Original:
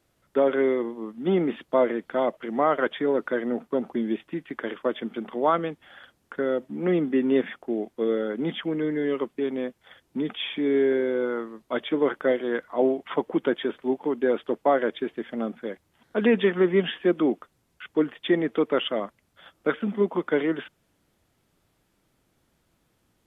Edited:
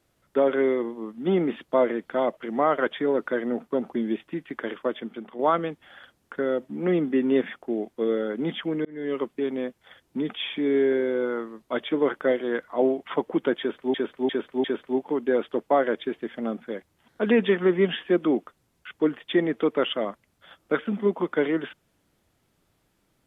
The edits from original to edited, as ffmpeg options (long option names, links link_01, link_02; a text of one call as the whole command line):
ffmpeg -i in.wav -filter_complex "[0:a]asplit=6[link_01][link_02][link_03][link_04][link_05][link_06];[link_01]atrim=end=5.39,asetpts=PTS-STARTPTS,afade=type=out:start_time=4.76:duration=0.63:silence=0.398107[link_07];[link_02]atrim=start=5.39:end=8.85,asetpts=PTS-STARTPTS,afade=type=in:duration=0.004:curve=hsin:silence=0.398107,afade=type=out:start_time=3.456:duration=0.004:curve=hsin[link_08];[link_03]atrim=start=8.85:end=13.942,asetpts=PTS-STARTPTS,afade=type=in:duration=0.33[link_09];[link_04]atrim=start=13.588:end=13.942[link_10];[link_05]atrim=start=13.588:end=13.942[link_11];[link_06]atrim=start=13.588[link_12];[link_07][link_08][link_09]concat=n=3:v=0:a=1[link_13];[link_13][link_10]acrossfade=duration=0.004:curve1=hsin:curve2=hsin[link_14];[link_14][link_11]acrossfade=duration=0.004:curve1=hsin:curve2=hsin[link_15];[link_15][link_12]acrossfade=duration=0.004:curve1=hsin:curve2=hsin" out.wav